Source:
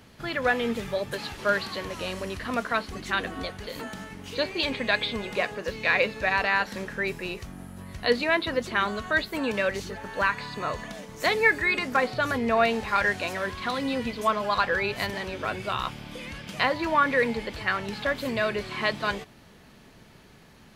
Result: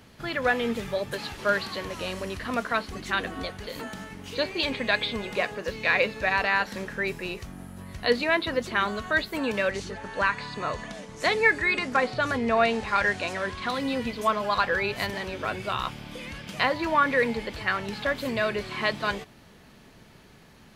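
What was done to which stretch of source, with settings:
0:09.70–0:13.68: low-pass filter 10,000 Hz 24 dB per octave

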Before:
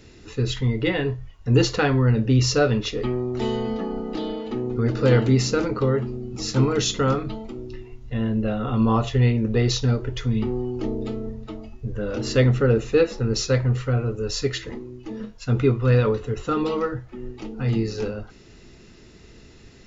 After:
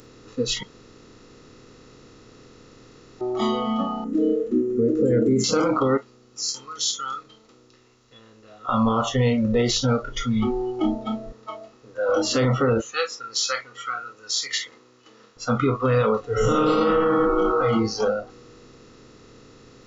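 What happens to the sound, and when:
0:00.63–0:03.21: fill with room tone
0:04.04–0:05.44: drawn EQ curve 180 Hz 0 dB, 470 Hz +5 dB, 890 Hz −28 dB, 1,700 Hz −8 dB, 4,600 Hz −26 dB, 7,900 Hz +8 dB
0:05.97–0:08.69: first difference
0:11.32–0:12.09: high-pass filter 490 Hz
0:12.81–0:15.37: high-pass filter 1,400 Hz
0:16.28–0:17.38: thrown reverb, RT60 2.2 s, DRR −8 dB
whole clip: compressor on every frequency bin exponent 0.4; noise reduction from a noise print of the clip's start 24 dB; brickwall limiter −12 dBFS

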